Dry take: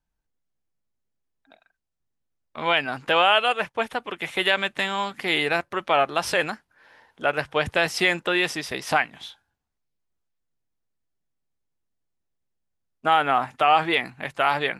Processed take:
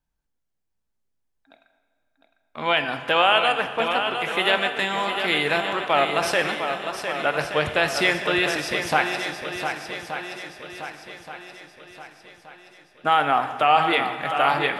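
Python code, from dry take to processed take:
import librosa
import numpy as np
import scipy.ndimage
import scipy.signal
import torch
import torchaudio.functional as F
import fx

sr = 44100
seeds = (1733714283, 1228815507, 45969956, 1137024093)

p1 = x + fx.echo_swing(x, sr, ms=1175, ratio=1.5, feedback_pct=43, wet_db=-7.5, dry=0)
y = fx.rev_plate(p1, sr, seeds[0], rt60_s=1.9, hf_ratio=0.8, predelay_ms=0, drr_db=8.0)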